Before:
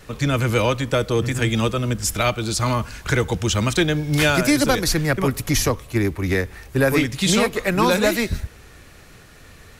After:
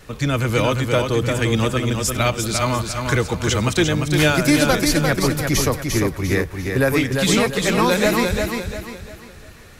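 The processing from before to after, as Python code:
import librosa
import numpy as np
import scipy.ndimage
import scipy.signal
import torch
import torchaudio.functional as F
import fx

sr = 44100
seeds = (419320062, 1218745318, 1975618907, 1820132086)

y = fx.echo_feedback(x, sr, ms=348, feedback_pct=37, wet_db=-5.0)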